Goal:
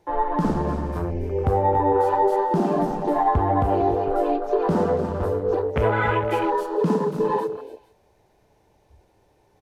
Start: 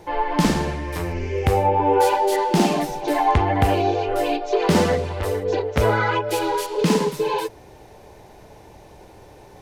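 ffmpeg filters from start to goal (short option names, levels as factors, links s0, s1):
-af "aecho=1:1:262|283|301|452:0.119|0.237|0.1|0.119,alimiter=limit=0.299:level=0:latency=1:release=154,afwtdn=0.0398"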